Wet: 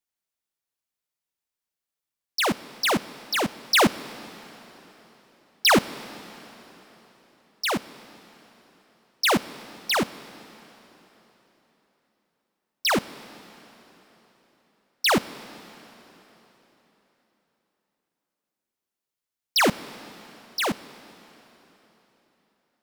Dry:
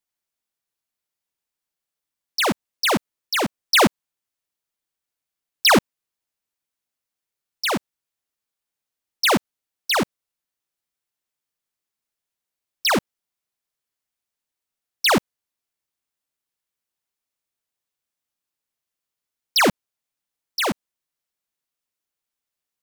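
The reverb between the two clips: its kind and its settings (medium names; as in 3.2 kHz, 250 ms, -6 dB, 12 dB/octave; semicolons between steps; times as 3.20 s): plate-style reverb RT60 3.9 s, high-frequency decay 0.9×, DRR 16 dB; trim -3 dB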